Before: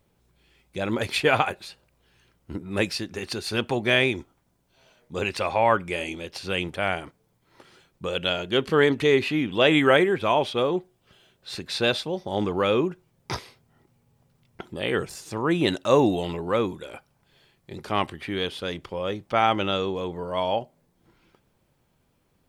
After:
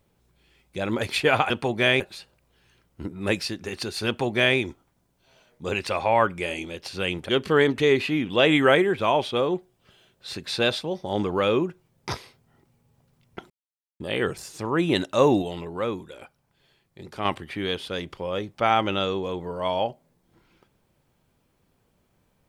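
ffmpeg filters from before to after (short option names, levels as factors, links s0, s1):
-filter_complex "[0:a]asplit=7[s0][s1][s2][s3][s4][s5][s6];[s0]atrim=end=1.502[s7];[s1]atrim=start=3.568:end=4.072[s8];[s2]atrim=start=1.498:end=6.792[s9];[s3]atrim=start=8.508:end=14.72,asetpts=PTS-STARTPTS,afade=t=out:st=6.208:d=0.004:c=hsin,apad=pad_dur=0.5[s10];[s4]atrim=start=14.72:end=16.142,asetpts=PTS-STARTPTS,afade=t=in:d=0.004:c=hsin[s11];[s5]atrim=start=16.138:end=17.972,asetpts=PTS-STARTPTS,volume=0.631[s12];[s6]atrim=start=17.968[s13];[s7][s8]acrossfade=d=0.004:c1=hsin:c2=hsin[s14];[s14][s9]acrossfade=d=0.004:c1=hsin:c2=hsin[s15];[s10][s11]concat=n=2:v=0:a=1[s16];[s15][s16]acrossfade=d=0.004:c1=hsin:c2=hsin[s17];[s17][s12]acrossfade=d=0.004:c1=hsin:c2=hsin[s18];[s18][s13]acrossfade=d=0.004:c1=hsin:c2=hsin"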